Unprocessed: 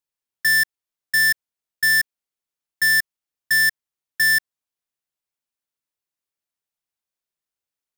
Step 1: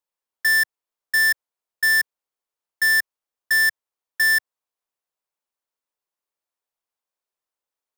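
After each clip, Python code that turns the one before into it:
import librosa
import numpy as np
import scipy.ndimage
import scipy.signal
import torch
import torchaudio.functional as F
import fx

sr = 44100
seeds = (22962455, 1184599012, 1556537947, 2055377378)

y = fx.graphic_eq(x, sr, hz=(125, 500, 1000), db=(-9, 6, 7))
y = F.gain(torch.from_numpy(y), -2.5).numpy()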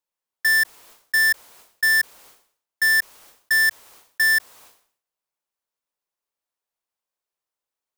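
y = fx.sustainer(x, sr, db_per_s=110.0)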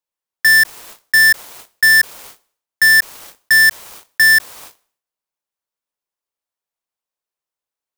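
y = fx.leveller(x, sr, passes=3)
y = F.gain(torch.from_numpy(y), 5.0).numpy()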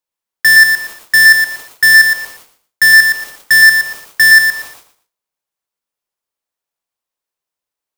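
y = fx.echo_feedback(x, sr, ms=117, feedback_pct=24, wet_db=-5.5)
y = F.gain(torch.from_numpy(y), 2.5).numpy()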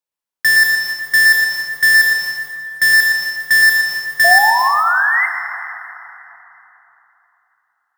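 y = fx.spec_paint(x, sr, seeds[0], shape='rise', start_s=4.24, length_s=1.02, low_hz=670.0, high_hz=2100.0, level_db=-11.0)
y = fx.rev_plate(y, sr, seeds[1], rt60_s=3.4, hf_ratio=0.6, predelay_ms=0, drr_db=5.0)
y = F.gain(torch.from_numpy(y), -4.5).numpy()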